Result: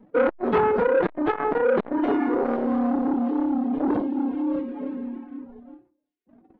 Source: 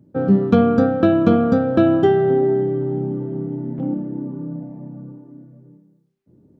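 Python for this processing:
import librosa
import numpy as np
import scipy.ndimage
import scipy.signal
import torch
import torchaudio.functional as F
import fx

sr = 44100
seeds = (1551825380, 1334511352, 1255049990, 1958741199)

p1 = fx.over_compress(x, sr, threshold_db=-23.0, ratio=-1.0)
p2 = x + F.gain(torch.from_numpy(p1), 1.0).numpy()
p3 = fx.leveller(p2, sr, passes=2)
p4 = scipy.signal.sosfilt(scipy.signal.butter(4, 3600.0, 'lowpass', fs=sr, output='sos'), p3)
p5 = fx.low_shelf(p4, sr, hz=480.0, db=-8.0)
p6 = fx.dereverb_blind(p5, sr, rt60_s=0.79)
p7 = fx.high_shelf(p6, sr, hz=2200.0, db=-7.0)
p8 = fx.hum_notches(p7, sr, base_hz=50, count=8)
p9 = fx.doubler(p8, sr, ms=17.0, db=-9.0)
p10 = fx.pitch_keep_formants(p9, sr, semitones=10.5)
p11 = p10 + fx.room_flutter(p10, sr, wall_m=8.6, rt60_s=0.21, dry=0)
p12 = fx.transformer_sat(p11, sr, knee_hz=840.0)
y = F.gain(torch.from_numpy(p12), -3.5).numpy()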